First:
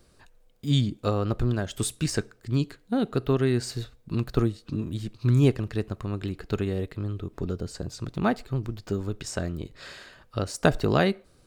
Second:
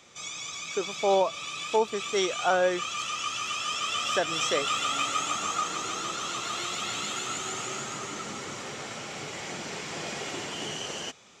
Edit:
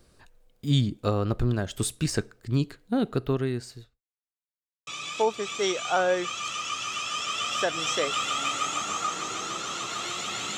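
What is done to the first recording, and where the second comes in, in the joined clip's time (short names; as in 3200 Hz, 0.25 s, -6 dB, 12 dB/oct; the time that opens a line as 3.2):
first
3.07–4.01 fade out linear
4.01–4.87 mute
4.87 switch to second from 1.41 s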